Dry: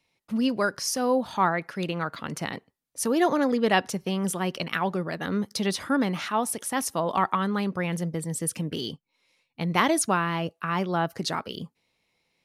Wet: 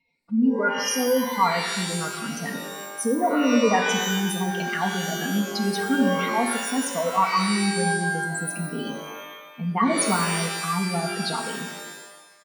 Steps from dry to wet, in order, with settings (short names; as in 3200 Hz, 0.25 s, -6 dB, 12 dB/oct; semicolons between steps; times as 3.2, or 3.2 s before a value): spectral contrast raised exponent 2.4; comb 4.3 ms, depth 72%; shimmer reverb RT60 1.1 s, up +12 st, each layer -2 dB, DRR 4.5 dB; gain -1.5 dB